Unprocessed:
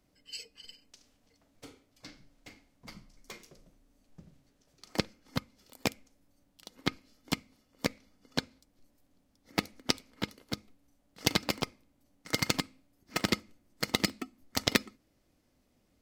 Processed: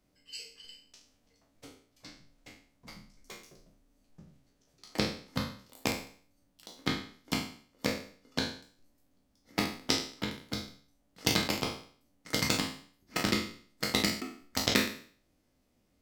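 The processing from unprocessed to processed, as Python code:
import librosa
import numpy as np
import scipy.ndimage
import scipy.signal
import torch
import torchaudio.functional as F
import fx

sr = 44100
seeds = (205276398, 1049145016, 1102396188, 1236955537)

y = fx.spec_trails(x, sr, decay_s=0.49)
y = y * 10.0 ** (-3.0 / 20.0)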